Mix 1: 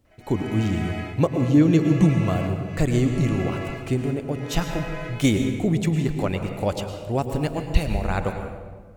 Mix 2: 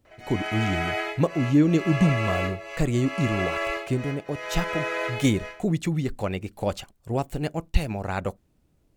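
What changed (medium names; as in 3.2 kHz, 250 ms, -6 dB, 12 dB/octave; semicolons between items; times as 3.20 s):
background +9.5 dB; reverb: off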